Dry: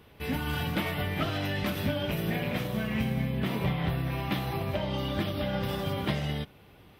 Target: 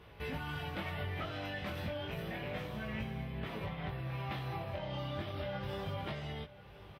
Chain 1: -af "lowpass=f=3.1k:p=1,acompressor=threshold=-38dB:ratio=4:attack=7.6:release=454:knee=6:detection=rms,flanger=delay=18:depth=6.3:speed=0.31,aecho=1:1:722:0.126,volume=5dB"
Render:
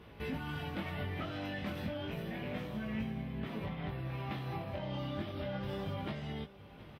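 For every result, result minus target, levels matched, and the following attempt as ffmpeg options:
echo 0.311 s early; 250 Hz band +3.5 dB
-af "lowpass=f=3.1k:p=1,acompressor=threshold=-38dB:ratio=4:attack=7.6:release=454:knee=6:detection=rms,flanger=delay=18:depth=6.3:speed=0.31,aecho=1:1:1033:0.126,volume=5dB"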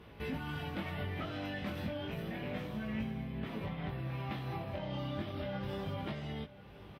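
250 Hz band +3.5 dB
-af "lowpass=f=3.1k:p=1,equalizer=f=240:t=o:w=0.92:g=-9,acompressor=threshold=-38dB:ratio=4:attack=7.6:release=454:knee=6:detection=rms,flanger=delay=18:depth=6.3:speed=0.31,aecho=1:1:1033:0.126,volume=5dB"

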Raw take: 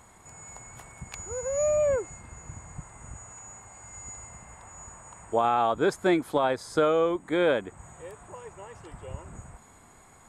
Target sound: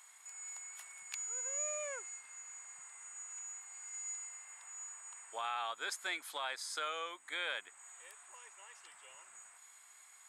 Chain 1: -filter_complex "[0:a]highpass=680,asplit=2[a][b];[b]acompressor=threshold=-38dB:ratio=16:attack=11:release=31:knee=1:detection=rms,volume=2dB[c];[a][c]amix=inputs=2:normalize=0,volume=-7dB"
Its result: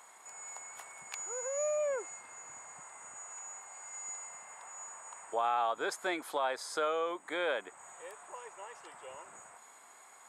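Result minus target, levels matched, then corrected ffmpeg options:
500 Hz band +9.5 dB
-filter_complex "[0:a]highpass=2k,asplit=2[a][b];[b]acompressor=threshold=-38dB:ratio=16:attack=11:release=31:knee=1:detection=rms,volume=2dB[c];[a][c]amix=inputs=2:normalize=0,volume=-7dB"

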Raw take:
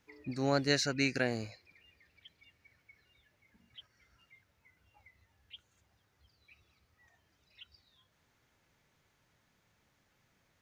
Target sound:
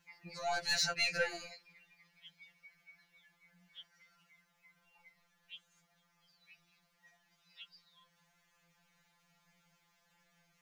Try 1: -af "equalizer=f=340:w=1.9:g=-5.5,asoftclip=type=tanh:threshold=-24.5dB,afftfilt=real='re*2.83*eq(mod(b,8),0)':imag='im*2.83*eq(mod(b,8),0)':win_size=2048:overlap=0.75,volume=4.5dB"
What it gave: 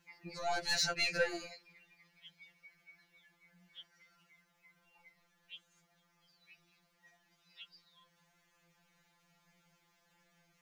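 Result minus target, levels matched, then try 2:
250 Hz band +5.5 dB
-af "equalizer=f=340:w=1.9:g=-15,asoftclip=type=tanh:threshold=-24.5dB,afftfilt=real='re*2.83*eq(mod(b,8),0)':imag='im*2.83*eq(mod(b,8),0)':win_size=2048:overlap=0.75,volume=4.5dB"

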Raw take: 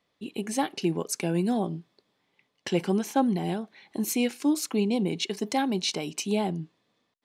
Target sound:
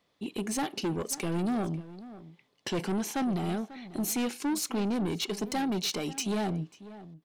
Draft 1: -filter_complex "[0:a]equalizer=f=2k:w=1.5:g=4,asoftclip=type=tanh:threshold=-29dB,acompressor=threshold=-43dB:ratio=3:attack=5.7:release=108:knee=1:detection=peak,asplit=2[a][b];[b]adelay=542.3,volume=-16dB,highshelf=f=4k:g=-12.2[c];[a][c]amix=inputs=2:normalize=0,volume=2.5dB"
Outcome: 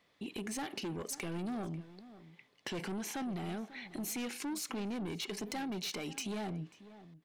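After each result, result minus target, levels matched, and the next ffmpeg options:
compressor: peak gain reduction +9.5 dB; 2000 Hz band +4.0 dB
-filter_complex "[0:a]equalizer=f=2k:w=1.5:g=4,asoftclip=type=tanh:threshold=-29dB,asplit=2[a][b];[b]adelay=542.3,volume=-16dB,highshelf=f=4k:g=-12.2[c];[a][c]amix=inputs=2:normalize=0,volume=2.5dB"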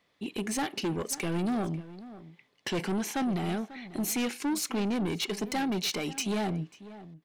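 2000 Hz band +3.0 dB
-filter_complex "[0:a]equalizer=f=2k:w=1.5:g=-2,asoftclip=type=tanh:threshold=-29dB,asplit=2[a][b];[b]adelay=542.3,volume=-16dB,highshelf=f=4k:g=-12.2[c];[a][c]amix=inputs=2:normalize=0,volume=2.5dB"

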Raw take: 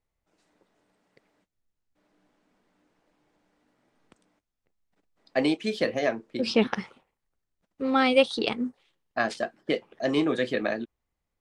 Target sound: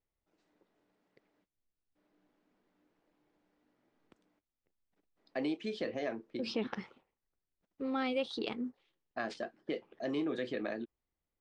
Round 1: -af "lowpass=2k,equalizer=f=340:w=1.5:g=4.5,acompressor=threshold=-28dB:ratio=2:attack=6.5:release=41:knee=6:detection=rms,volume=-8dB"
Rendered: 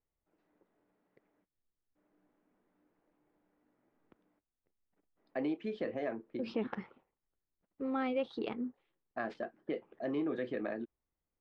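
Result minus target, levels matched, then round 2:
4000 Hz band -9.0 dB
-af "lowpass=5.6k,equalizer=f=340:w=1.5:g=4.5,acompressor=threshold=-28dB:ratio=2:attack=6.5:release=41:knee=6:detection=rms,volume=-8dB"

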